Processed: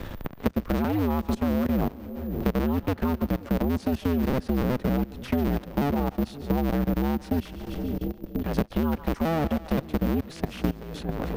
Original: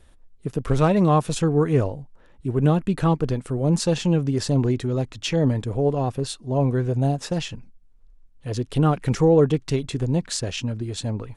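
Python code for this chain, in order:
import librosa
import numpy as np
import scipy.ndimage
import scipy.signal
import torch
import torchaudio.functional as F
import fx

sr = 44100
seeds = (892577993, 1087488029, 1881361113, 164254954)

y = fx.cycle_switch(x, sr, every=2, mode='inverted')
y = fx.echo_split(y, sr, split_hz=500.0, low_ms=521, high_ms=143, feedback_pct=52, wet_db=-14.5)
y = fx.dynamic_eq(y, sr, hz=220.0, q=4.1, threshold_db=-38.0, ratio=4.0, max_db=7)
y = (np.kron(scipy.signal.resample_poly(y, 1, 3), np.eye(3)[0]) * 3)[:len(y)]
y = fx.level_steps(y, sr, step_db=19)
y = scipy.signal.sosfilt(scipy.signal.butter(2, 6700.0, 'lowpass', fs=sr, output='sos'), y)
y = fx.high_shelf(y, sr, hz=3700.0, db=-8.0)
y = fx.band_squash(y, sr, depth_pct=100)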